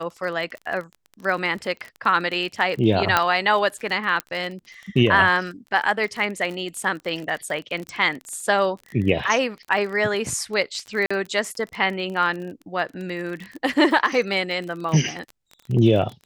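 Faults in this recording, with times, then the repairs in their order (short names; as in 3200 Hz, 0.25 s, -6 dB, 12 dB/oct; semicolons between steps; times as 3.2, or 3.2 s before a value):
crackle 31/s -29 dBFS
3.17 pop -3 dBFS
4.2 pop -10 dBFS
7.89 pop -20 dBFS
11.06–11.11 gap 45 ms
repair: de-click; interpolate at 11.06, 45 ms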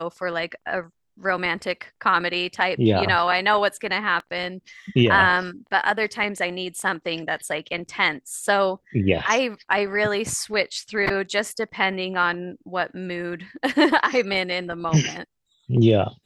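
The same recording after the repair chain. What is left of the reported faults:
4.2 pop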